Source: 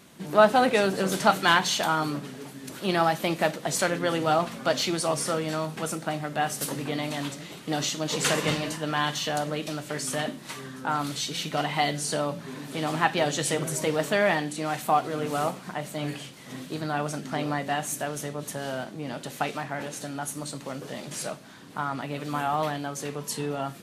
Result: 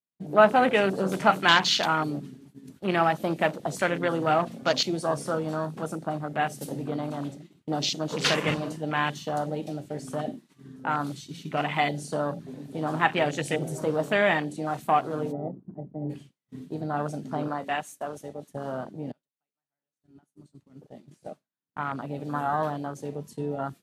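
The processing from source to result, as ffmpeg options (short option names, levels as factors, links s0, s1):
-filter_complex "[0:a]asplit=3[s0][s1][s2];[s0]afade=t=out:st=15.31:d=0.02[s3];[s1]asuperpass=centerf=240:order=4:qfactor=0.58,afade=t=in:st=15.31:d=0.02,afade=t=out:st=16.09:d=0.02[s4];[s2]afade=t=in:st=16.09:d=0.02[s5];[s3][s4][s5]amix=inputs=3:normalize=0,asettb=1/sr,asplit=3[s6][s7][s8];[s6]atrim=end=17.484[s9];[s7]atrim=start=17.48:end=18.52,asetpts=PTS-STARTPTS,afade=t=in:d=0.004:c=qsin,afade=t=out:st=1.036:d=0.004:c=qsin,highpass=f=360:p=1[s10];[s8]atrim=start=18.516[s11];[s9][s10]acrossfade=d=0.004:c1=hsin:c2=qsin[s12];[s12][s11]acrossfade=d=0.004:c1=qsin:c2=hsin,asplit=2[s13][s14];[s13]atrim=end=19.12,asetpts=PTS-STARTPTS,afade=t=out:st=19.116:d=0.004:c=hsin:silence=0.0794328[s15];[s14]atrim=start=19.12,asetpts=PTS-STARTPTS,afade=t=in:d=3.11:silence=0.0794328[s16];[s15][s16]concat=n=2:v=0:a=1,afwtdn=0.0282,agate=range=0.0224:threshold=0.0126:ratio=3:detection=peak,adynamicequalizer=threshold=0.0112:dfrequency=2300:dqfactor=0.7:tfrequency=2300:tqfactor=0.7:attack=5:release=100:ratio=0.375:range=3:mode=boostabove:tftype=highshelf"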